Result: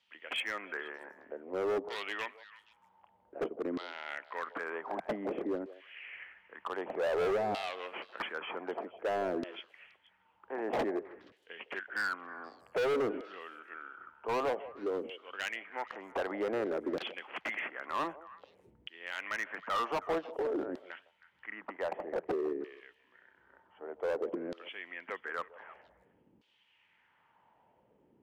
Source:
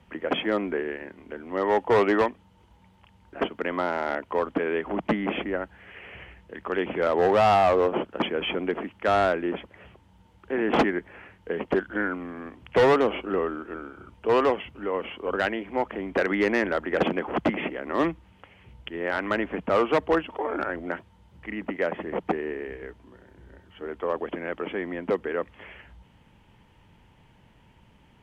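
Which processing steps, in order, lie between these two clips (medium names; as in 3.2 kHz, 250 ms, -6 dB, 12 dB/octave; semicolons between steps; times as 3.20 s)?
LFO band-pass saw down 0.53 Hz 280–4300 Hz; hard clipper -28.5 dBFS, distortion -6 dB; repeats whose band climbs or falls 158 ms, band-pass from 570 Hz, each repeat 1.4 oct, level -12 dB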